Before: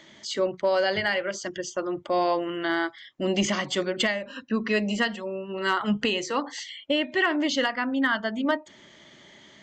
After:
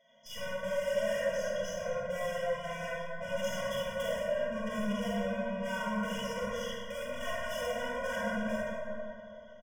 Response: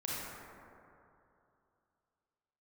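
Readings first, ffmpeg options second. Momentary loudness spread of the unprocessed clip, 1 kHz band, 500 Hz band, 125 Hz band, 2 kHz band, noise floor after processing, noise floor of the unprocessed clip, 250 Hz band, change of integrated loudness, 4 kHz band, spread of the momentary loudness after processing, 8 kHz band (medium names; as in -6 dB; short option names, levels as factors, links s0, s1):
8 LU, -9.5 dB, -5.0 dB, -5.5 dB, -10.0 dB, -50 dBFS, -53 dBFS, -10.5 dB, -8.5 dB, -12.5 dB, 7 LU, -9.0 dB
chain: -filter_complex "[0:a]acontrast=67,aecho=1:1:118:0.0794,flanger=delay=7.3:depth=2.8:regen=-1:speed=0.29:shape=sinusoidal,agate=range=0.224:threshold=0.0178:ratio=16:detection=peak,highpass=f=210:w=0.5412,highpass=f=210:w=1.3066,equalizer=f=270:t=q:w=4:g=6,equalizer=f=480:t=q:w=4:g=8,equalizer=f=680:t=q:w=4:g=7,equalizer=f=1100:t=q:w=4:g=-3,equalizer=f=2200:t=q:w=4:g=-10,lowpass=f=5600:w=0.5412,lowpass=f=5600:w=1.3066,aeval=exprs='(tanh(50.1*val(0)+0.35)-tanh(0.35))/50.1':c=same,asuperstop=centerf=4200:order=20:qfactor=3.3[s0];[1:a]atrim=start_sample=2205[s1];[s0][s1]afir=irnorm=-1:irlink=0,afftfilt=real='re*eq(mod(floor(b*sr/1024/230),2),0)':imag='im*eq(mod(floor(b*sr/1024/230),2),0)':win_size=1024:overlap=0.75"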